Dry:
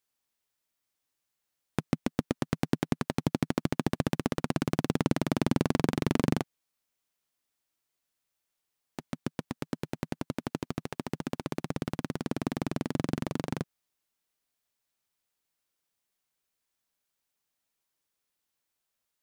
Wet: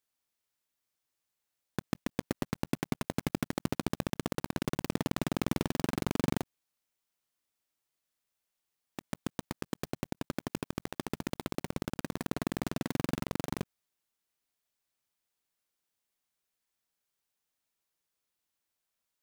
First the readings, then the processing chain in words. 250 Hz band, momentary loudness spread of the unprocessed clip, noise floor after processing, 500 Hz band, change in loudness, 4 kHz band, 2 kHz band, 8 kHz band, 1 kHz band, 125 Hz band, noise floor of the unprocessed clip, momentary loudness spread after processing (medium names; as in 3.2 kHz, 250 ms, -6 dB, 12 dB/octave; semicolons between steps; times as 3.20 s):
-4.5 dB, 10 LU, under -85 dBFS, -4.0 dB, -4.0 dB, -1.0 dB, -2.0 dB, +0.5 dB, -3.0 dB, -4.5 dB, -84 dBFS, 7 LU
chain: block-companded coder 3-bit; peak limiter -15 dBFS, peak gain reduction 6.5 dB; trim -2.5 dB